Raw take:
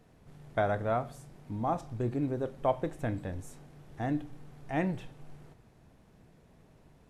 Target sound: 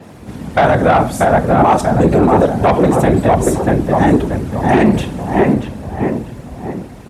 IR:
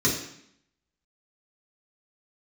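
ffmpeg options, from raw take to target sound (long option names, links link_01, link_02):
-filter_complex "[0:a]equalizer=frequency=8900:width=2.4:gain=2.5,asplit=2[link_01][link_02];[link_02]adelay=635,lowpass=frequency=2000:poles=1,volume=-4dB,asplit=2[link_03][link_04];[link_04]adelay=635,lowpass=frequency=2000:poles=1,volume=0.44,asplit=2[link_05][link_06];[link_06]adelay=635,lowpass=frequency=2000:poles=1,volume=0.44,asplit=2[link_07][link_08];[link_08]adelay=635,lowpass=frequency=2000:poles=1,volume=0.44,asplit=2[link_09][link_10];[link_10]adelay=635,lowpass=frequency=2000:poles=1,volume=0.44,asplit=2[link_11][link_12];[link_12]adelay=635,lowpass=frequency=2000:poles=1,volume=0.44[link_13];[link_03][link_05][link_07][link_09][link_11][link_13]amix=inputs=6:normalize=0[link_14];[link_01][link_14]amix=inputs=2:normalize=0,afftfilt=real='hypot(re,im)*cos(2*PI*random(0))':imag='hypot(re,im)*sin(2*PI*random(1))':win_size=512:overlap=0.75,asoftclip=type=tanh:threshold=-30.5dB,afreqshift=40,alimiter=level_in=31dB:limit=-1dB:release=50:level=0:latency=1,adynamicequalizer=threshold=0.0178:dfrequency=4800:dqfactor=0.7:tfrequency=4800:tqfactor=0.7:attack=5:release=100:ratio=0.375:range=1.5:mode=boostabove:tftype=highshelf,volume=-1dB"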